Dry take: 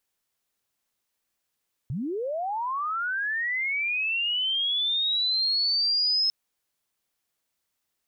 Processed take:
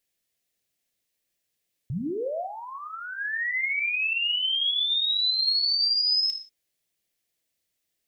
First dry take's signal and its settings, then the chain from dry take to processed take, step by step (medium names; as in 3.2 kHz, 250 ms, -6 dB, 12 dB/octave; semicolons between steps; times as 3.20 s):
sweep linear 110 Hz -> 5.2 kHz -27.5 dBFS -> -20.5 dBFS 4.40 s
high-order bell 1.1 kHz -9.5 dB 1.1 oct; gated-style reverb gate 200 ms falling, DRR 7.5 dB